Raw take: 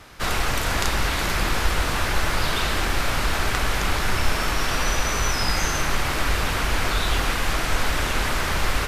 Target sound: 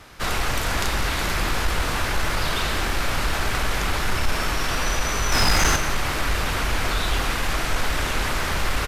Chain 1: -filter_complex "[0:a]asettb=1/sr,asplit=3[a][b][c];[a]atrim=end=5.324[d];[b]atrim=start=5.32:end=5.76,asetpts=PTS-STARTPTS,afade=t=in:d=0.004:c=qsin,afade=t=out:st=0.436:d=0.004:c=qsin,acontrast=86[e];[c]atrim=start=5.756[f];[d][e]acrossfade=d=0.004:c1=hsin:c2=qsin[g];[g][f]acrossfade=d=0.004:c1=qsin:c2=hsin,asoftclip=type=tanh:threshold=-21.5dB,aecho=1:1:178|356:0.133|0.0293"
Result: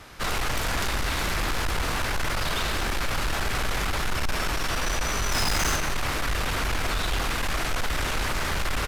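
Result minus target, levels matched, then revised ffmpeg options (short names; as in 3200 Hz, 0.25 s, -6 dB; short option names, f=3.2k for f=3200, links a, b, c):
soft clip: distortion +10 dB
-filter_complex "[0:a]asettb=1/sr,asplit=3[a][b][c];[a]atrim=end=5.324[d];[b]atrim=start=5.32:end=5.76,asetpts=PTS-STARTPTS,afade=t=in:d=0.004:c=qsin,afade=t=out:st=0.436:d=0.004:c=qsin,acontrast=86[e];[c]atrim=start=5.756[f];[d][e]acrossfade=d=0.004:c1=hsin:c2=qsin[g];[g][f]acrossfade=d=0.004:c1=qsin:c2=hsin,asoftclip=type=tanh:threshold=-11.5dB,aecho=1:1:178|356:0.133|0.0293"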